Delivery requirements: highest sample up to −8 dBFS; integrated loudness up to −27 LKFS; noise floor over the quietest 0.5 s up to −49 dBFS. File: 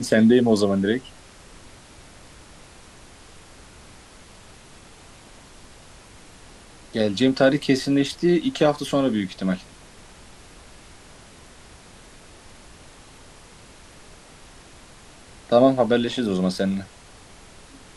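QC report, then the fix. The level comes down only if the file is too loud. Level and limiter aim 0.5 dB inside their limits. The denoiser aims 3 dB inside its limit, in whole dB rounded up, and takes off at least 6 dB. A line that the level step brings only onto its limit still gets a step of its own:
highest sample −5.5 dBFS: out of spec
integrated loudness −21.0 LKFS: out of spec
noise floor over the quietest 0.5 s −47 dBFS: out of spec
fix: level −6.5 dB

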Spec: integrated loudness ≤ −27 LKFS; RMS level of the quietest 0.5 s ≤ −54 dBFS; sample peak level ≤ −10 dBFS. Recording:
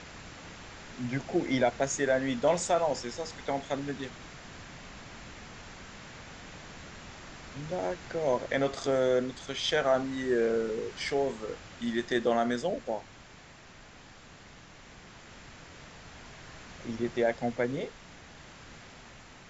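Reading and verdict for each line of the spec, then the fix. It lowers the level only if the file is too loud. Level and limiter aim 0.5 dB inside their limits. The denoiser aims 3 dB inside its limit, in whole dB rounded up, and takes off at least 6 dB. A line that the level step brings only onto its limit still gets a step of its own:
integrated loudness −30.5 LKFS: in spec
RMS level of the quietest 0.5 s −52 dBFS: out of spec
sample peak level −14.0 dBFS: in spec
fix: broadband denoise 6 dB, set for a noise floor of −52 dBFS

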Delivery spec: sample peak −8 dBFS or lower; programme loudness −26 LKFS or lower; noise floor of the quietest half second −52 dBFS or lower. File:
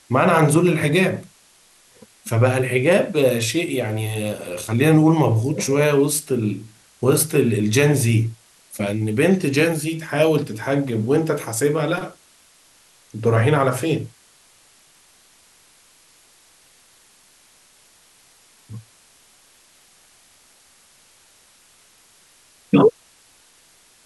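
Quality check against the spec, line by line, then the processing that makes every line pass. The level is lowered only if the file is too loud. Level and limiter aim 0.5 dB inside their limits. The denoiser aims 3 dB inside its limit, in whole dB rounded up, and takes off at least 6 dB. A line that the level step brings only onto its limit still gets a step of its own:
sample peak −4.5 dBFS: out of spec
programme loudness −19.0 LKFS: out of spec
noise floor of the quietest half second −54 dBFS: in spec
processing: level −7.5 dB

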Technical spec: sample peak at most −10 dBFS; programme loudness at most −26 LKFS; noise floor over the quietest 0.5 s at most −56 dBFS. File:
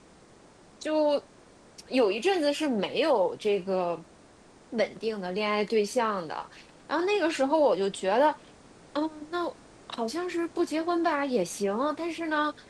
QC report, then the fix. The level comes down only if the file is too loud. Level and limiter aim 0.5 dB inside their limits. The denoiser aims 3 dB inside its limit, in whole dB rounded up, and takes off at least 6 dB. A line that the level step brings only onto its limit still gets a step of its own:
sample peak −12.5 dBFS: in spec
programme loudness −28.0 LKFS: in spec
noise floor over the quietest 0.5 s −55 dBFS: out of spec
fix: broadband denoise 6 dB, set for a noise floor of −55 dBFS

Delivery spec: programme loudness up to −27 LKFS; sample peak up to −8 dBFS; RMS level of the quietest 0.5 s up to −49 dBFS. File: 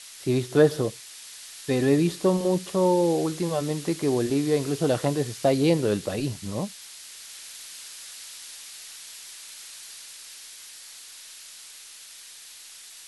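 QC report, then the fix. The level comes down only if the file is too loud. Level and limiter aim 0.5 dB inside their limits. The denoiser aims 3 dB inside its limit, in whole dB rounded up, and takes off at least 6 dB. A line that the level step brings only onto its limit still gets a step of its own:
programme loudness −24.5 LKFS: out of spec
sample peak −6.5 dBFS: out of spec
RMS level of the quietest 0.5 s −45 dBFS: out of spec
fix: broadband denoise 6 dB, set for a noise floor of −45 dBFS
level −3 dB

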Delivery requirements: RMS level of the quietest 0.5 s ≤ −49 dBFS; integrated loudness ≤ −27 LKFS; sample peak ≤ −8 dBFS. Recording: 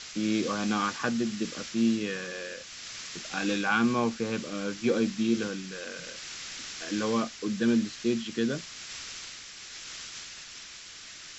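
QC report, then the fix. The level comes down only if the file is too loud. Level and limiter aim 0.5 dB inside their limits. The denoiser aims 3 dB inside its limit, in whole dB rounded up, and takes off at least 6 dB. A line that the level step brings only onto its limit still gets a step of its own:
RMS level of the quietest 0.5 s −46 dBFS: out of spec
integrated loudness −30.5 LKFS: in spec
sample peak −13.5 dBFS: in spec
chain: broadband denoise 6 dB, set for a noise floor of −46 dBFS

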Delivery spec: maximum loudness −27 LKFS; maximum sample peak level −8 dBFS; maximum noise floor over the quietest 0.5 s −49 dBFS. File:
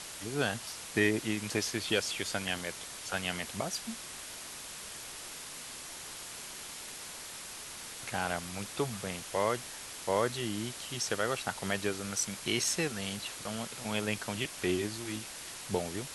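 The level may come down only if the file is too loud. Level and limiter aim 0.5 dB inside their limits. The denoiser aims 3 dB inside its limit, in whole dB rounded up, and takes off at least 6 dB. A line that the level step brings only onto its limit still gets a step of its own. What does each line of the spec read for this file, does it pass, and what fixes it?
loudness −35.0 LKFS: in spec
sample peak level −14.0 dBFS: in spec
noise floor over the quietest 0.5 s −45 dBFS: out of spec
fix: broadband denoise 7 dB, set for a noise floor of −45 dBFS

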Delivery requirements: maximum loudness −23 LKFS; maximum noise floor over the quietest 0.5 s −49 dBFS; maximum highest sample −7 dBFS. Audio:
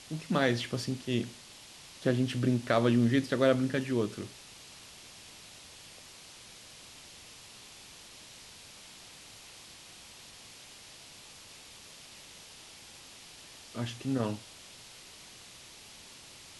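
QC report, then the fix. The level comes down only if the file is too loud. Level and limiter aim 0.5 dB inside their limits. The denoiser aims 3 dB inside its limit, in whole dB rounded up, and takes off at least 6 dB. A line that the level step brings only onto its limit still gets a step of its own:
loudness −30.5 LKFS: in spec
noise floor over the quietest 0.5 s −52 dBFS: in spec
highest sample −11.5 dBFS: in spec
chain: no processing needed

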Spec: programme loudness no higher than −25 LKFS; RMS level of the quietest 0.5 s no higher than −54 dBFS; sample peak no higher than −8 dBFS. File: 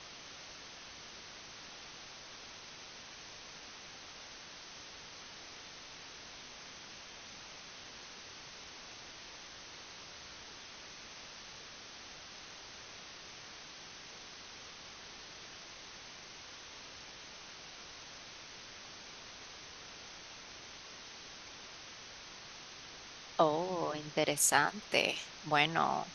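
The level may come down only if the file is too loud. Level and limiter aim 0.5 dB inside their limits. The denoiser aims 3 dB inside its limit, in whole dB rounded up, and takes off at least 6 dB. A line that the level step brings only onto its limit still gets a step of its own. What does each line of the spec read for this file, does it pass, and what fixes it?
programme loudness −40.5 LKFS: in spec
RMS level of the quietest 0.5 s −51 dBFS: out of spec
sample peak −10.0 dBFS: in spec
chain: broadband denoise 6 dB, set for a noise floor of −51 dBFS

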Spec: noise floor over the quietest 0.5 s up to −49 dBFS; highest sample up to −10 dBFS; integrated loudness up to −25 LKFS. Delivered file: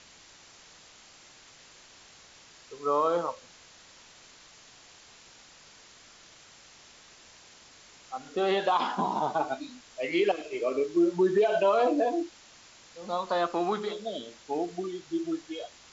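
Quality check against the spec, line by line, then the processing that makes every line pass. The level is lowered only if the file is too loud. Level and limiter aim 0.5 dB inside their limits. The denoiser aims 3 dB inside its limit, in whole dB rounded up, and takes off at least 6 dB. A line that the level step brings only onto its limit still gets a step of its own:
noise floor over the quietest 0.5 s −54 dBFS: in spec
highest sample −14.5 dBFS: in spec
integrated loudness −29.0 LKFS: in spec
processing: no processing needed

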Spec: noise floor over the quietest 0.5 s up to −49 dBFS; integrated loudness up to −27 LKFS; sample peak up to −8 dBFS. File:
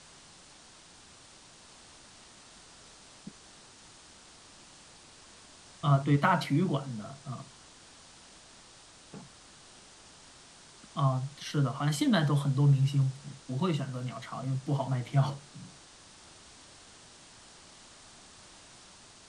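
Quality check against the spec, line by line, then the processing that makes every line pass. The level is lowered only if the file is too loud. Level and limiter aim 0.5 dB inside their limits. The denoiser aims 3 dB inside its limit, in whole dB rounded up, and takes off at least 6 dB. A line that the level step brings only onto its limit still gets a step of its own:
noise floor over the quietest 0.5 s −55 dBFS: in spec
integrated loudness −30.0 LKFS: in spec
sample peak −11.5 dBFS: in spec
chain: no processing needed

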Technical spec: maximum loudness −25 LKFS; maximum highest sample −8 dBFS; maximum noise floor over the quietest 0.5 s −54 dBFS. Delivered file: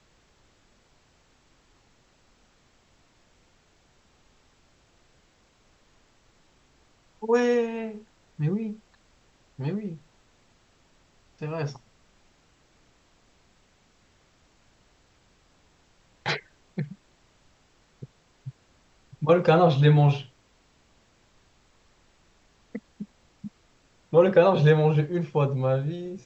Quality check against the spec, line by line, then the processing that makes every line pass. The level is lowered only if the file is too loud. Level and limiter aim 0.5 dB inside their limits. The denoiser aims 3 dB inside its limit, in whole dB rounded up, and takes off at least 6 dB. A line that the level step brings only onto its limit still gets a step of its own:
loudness −24.0 LKFS: out of spec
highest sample −6.5 dBFS: out of spec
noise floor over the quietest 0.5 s −63 dBFS: in spec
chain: level −1.5 dB
brickwall limiter −8.5 dBFS

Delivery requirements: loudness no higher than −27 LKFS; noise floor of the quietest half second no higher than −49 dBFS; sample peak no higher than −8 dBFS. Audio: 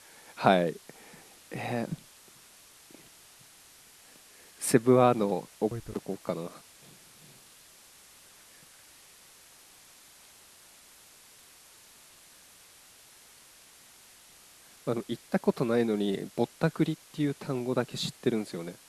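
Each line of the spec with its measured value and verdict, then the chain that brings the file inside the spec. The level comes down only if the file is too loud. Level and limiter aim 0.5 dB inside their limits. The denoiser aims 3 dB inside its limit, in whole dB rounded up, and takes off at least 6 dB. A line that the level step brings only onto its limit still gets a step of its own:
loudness −29.5 LKFS: in spec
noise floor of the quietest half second −56 dBFS: in spec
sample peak −6.0 dBFS: out of spec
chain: brickwall limiter −8.5 dBFS

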